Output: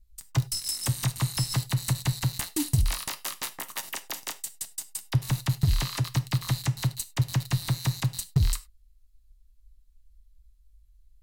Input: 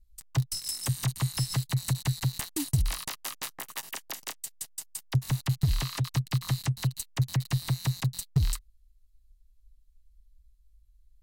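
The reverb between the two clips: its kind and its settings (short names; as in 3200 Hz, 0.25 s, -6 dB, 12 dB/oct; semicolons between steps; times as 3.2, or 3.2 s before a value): non-linear reverb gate 0.12 s falling, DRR 10.5 dB; gain +2.5 dB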